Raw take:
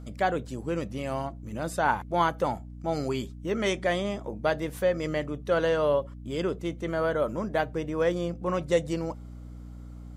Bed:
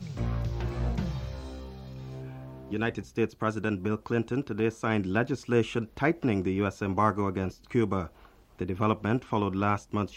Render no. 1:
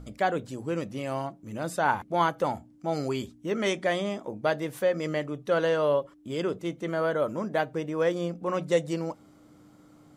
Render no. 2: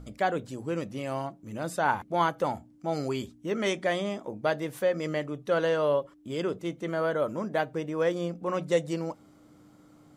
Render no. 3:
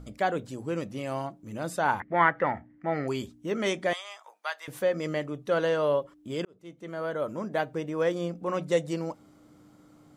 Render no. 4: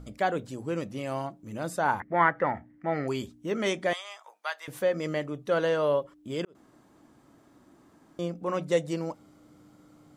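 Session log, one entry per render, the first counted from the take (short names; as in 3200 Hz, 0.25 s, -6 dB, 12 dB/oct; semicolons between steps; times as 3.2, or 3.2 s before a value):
de-hum 60 Hz, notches 4
gain -1 dB
2–3.08 synth low-pass 1900 Hz, resonance Q 11; 3.93–4.68 HPF 940 Hz 24 dB/oct; 6.45–7.95 fade in equal-power
1.68–2.55 bell 3000 Hz -4.5 dB 1 oct; 6.55–8.19 room tone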